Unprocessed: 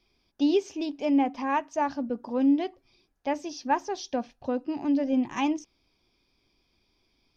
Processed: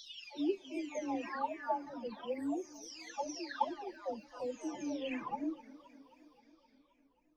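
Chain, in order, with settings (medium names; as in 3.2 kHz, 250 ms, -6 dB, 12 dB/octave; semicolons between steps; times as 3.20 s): delay that grows with frequency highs early, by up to 967 ms; treble shelf 4.2 kHz +6.5 dB; modulated delay 263 ms, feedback 68%, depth 184 cents, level -19 dB; trim -7 dB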